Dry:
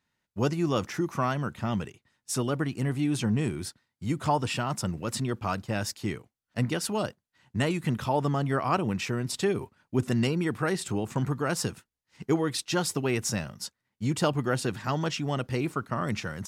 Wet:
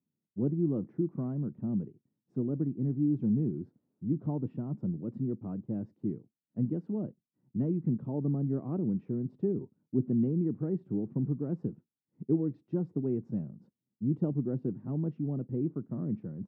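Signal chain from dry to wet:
0:03.43–0:04.32: bit-depth reduction 10 bits, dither triangular
flat-topped band-pass 220 Hz, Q 1

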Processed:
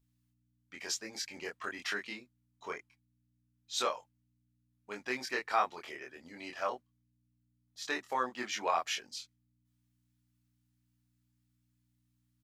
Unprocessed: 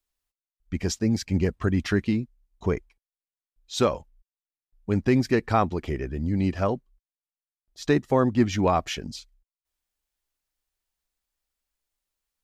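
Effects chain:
high-pass filter 890 Hz 12 dB per octave
mains hum 60 Hz, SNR 33 dB
double-tracking delay 24 ms −2.5 dB
level −5 dB

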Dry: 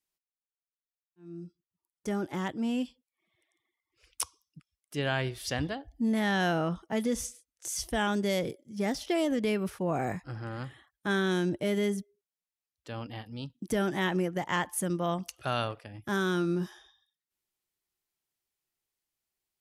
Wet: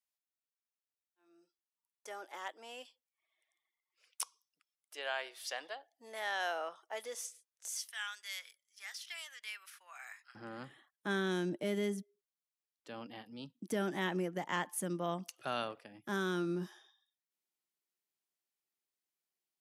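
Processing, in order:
high-pass filter 550 Hz 24 dB per octave, from 0:07.78 1,400 Hz, from 0:10.35 170 Hz
level −6 dB

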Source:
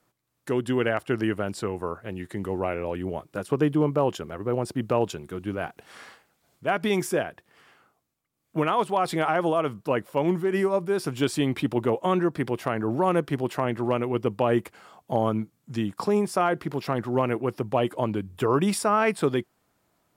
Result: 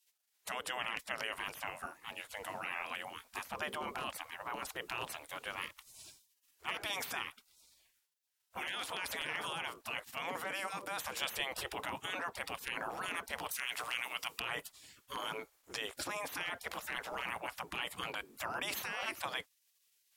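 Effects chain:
gate on every frequency bin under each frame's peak −20 dB weak
0:13.51–0:14.40: tilt shelving filter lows −10 dB, about 1,400 Hz
in parallel at −1.5 dB: compressor whose output falls as the input rises −45 dBFS, ratio −0.5
on the sum: level −1.5 dB

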